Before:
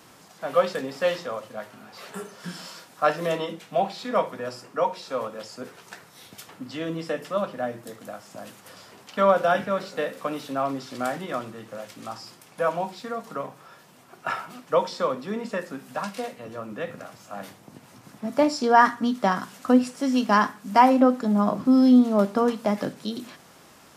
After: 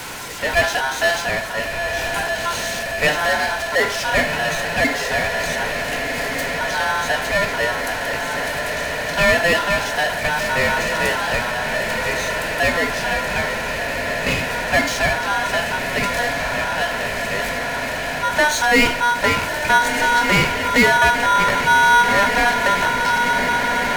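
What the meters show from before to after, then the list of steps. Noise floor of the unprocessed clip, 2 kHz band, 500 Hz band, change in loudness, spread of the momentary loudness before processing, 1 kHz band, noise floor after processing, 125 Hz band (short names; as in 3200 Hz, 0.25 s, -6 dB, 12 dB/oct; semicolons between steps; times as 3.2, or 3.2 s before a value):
-52 dBFS, +18.0 dB, +3.5 dB, +6.0 dB, 21 LU, +6.5 dB, -25 dBFS, +8.5 dB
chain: diffused feedback echo 1.411 s, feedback 75%, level -10.5 dB; ring modulator 1200 Hz; power-law curve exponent 0.5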